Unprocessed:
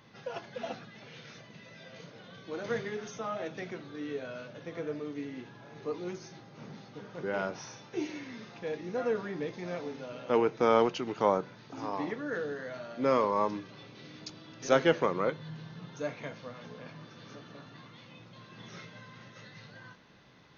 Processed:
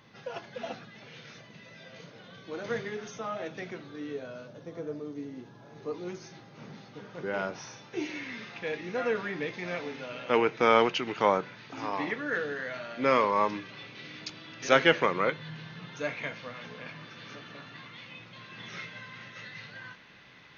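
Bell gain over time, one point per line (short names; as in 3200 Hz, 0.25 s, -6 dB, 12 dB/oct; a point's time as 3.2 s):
bell 2300 Hz 1.6 oct
3.83 s +2 dB
4.65 s -9 dB
5.38 s -9 dB
6.27 s +3 dB
7.86 s +3 dB
8.3 s +11 dB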